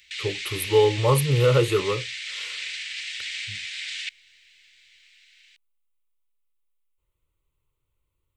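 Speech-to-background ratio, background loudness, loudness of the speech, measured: 9.0 dB, −31.0 LKFS, −22.0 LKFS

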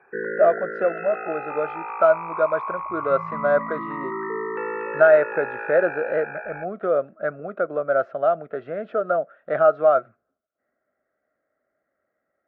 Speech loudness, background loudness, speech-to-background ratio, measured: −22.5 LKFS, −31.0 LKFS, 8.5 dB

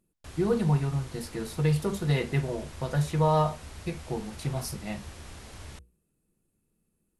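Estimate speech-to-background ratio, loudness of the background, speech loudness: 16.0 dB, −45.0 LKFS, −29.0 LKFS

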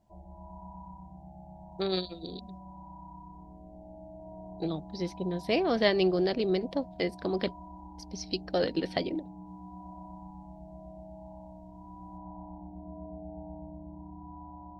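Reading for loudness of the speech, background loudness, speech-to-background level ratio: −31.0 LKFS, −47.0 LKFS, 16.0 dB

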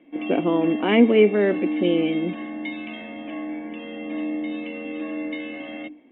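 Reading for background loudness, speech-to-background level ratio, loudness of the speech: −30.5 LKFS, 10.0 dB, −20.5 LKFS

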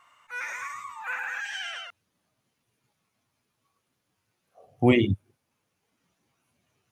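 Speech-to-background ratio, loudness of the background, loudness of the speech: 10.5 dB, −34.0 LKFS, −23.5 LKFS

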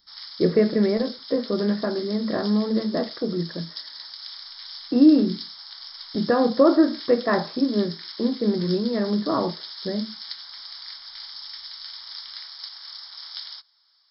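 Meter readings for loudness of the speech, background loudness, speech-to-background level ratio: −23.0 LKFS, −36.5 LKFS, 13.5 dB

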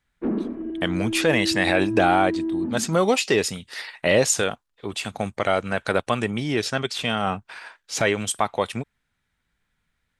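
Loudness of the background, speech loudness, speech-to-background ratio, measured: −28.0 LKFS, −23.5 LKFS, 4.5 dB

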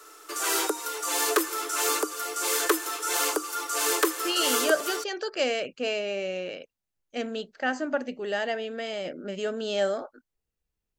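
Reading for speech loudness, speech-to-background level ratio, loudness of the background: −30.0 LKFS, −3.5 dB, −26.5 LKFS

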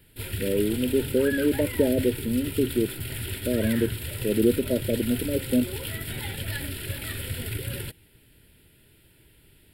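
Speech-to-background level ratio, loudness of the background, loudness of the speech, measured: 6.5 dB, −32.5 LKFS, −26.0 LKFS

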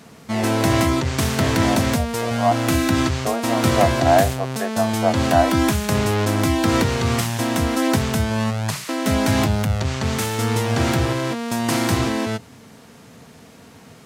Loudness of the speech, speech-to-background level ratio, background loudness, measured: −24.0 LKFS, −3.5 dB, −20.5 LKFS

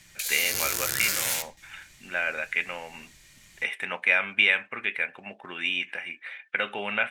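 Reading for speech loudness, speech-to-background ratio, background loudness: −27.0 LKFS, −0.5 dB, −26.5 LKFS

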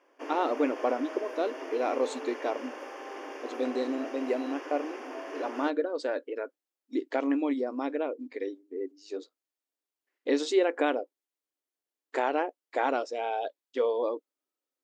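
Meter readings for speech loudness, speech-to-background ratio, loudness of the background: −31.5 LKFS, 9.0 dB, −40.5 LKFS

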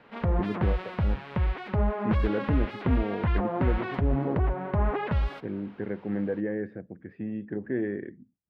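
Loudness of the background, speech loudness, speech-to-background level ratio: −29.0 LKFS, −33.5 LKFS, −4.5 dB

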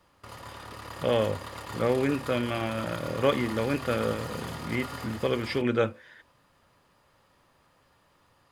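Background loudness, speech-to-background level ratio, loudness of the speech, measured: −40.0 LKFS, 11.0 dB, −29.0 LKFS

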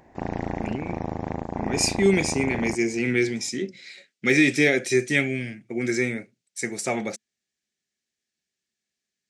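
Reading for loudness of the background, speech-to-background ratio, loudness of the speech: −31.5 LKFS, 7.5 dB, −24.0 LKFS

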